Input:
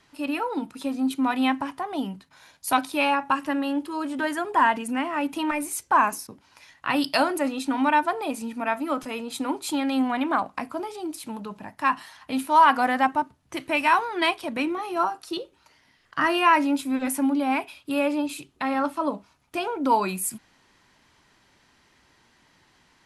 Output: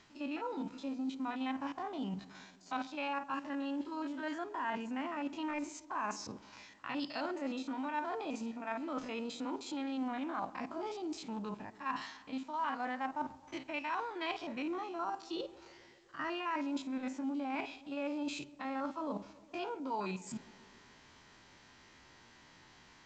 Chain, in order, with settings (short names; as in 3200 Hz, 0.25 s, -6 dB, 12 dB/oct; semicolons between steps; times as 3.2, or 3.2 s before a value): stepped spectrum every 50 ms; reverse; compressor 4:1, threshold -40 dBFS, peak gain reduction 22 dB; reverse; tape echo 0.134 s, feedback 79%, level -18 dB, low-pass 1200 Hz; gain +1.5 dB; A-law 128 kbps 16000 Hz